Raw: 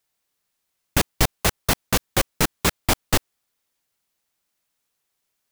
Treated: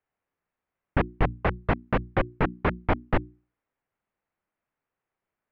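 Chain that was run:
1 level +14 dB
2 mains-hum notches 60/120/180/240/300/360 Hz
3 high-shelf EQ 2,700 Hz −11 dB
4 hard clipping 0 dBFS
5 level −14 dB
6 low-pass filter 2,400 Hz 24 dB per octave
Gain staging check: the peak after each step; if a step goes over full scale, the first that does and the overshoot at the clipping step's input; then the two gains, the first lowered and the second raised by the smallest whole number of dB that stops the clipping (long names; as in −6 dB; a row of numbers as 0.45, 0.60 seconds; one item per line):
+11.0, +10.5, +8.5, 0.0, −14.0, −13.0 dBFS
step 1, 8.5 dB
step 1 +5 dB, step 5 −5 dB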